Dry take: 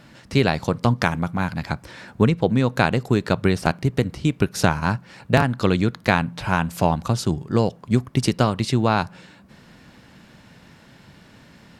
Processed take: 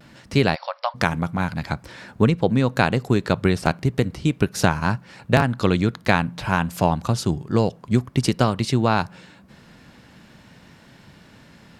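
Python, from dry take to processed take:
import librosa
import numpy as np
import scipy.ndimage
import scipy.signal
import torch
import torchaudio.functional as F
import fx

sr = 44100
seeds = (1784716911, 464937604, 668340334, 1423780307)

y = fx.vibrato(x, sr, rate_hz=0.49, depth_cents=26.0)
y = fx.brickwall_bandpass(y, sr, low_hz=520.0, high_hz=5700.0, at=(0.54, 0.94), fade=0.02)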